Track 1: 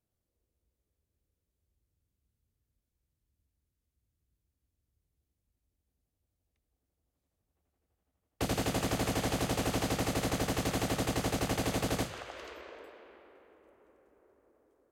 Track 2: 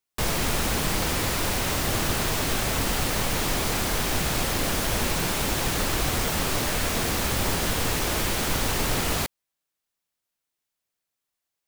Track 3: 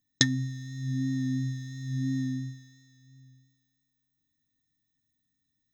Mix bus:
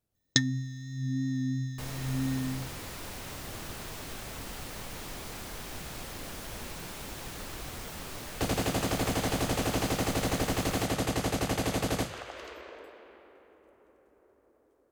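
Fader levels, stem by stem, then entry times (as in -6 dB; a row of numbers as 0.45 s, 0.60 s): +2.0 dB, -15.5 dB, -1.5 dB; 0.00 s, 1.60 s, 0.15 s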